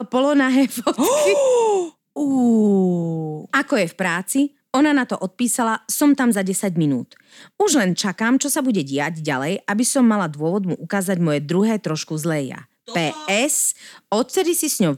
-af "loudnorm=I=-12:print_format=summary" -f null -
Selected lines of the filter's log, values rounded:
Input Integrated:    -19.5 LUFS
Input True Peak:      -4.8 dBTP
Input LRA:             2.5 LU
Input Threshold:     -29.7 LUFS